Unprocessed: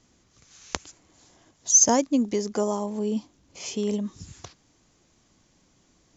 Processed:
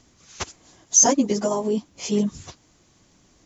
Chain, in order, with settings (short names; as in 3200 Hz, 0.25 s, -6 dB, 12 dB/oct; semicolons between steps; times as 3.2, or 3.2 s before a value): plain phase-vocoder stretch 0.56×; gain +8 dB